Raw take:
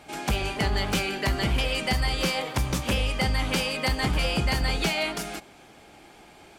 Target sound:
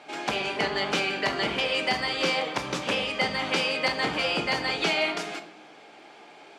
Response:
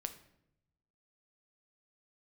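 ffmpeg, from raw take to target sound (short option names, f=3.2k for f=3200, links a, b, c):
-filter_complex "[0:a]highpass=320,lowpass=5.1k[a];[1:a]atrim=start_sample=2205[b];[a][b]afir=irnorm=-1:irlink=0,volume=4.5dB"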